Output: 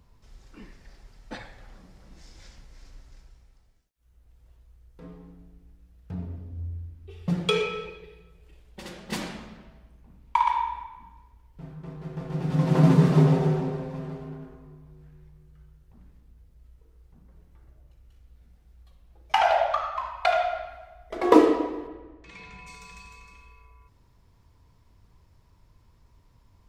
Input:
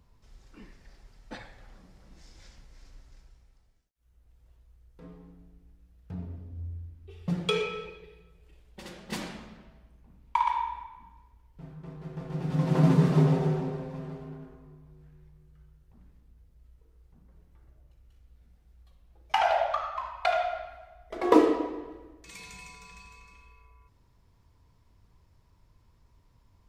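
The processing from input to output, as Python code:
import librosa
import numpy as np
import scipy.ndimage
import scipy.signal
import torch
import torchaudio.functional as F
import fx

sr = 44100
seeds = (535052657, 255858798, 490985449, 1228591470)

y = fx.lowpass(x, sr, hz=fx.line((21.87, 3700.0), (22.66, 2200.0)), slope=12, at=(21.87, 22.66), fade=0.02)
y = y * 10.0 ** (3.5 / 20.0)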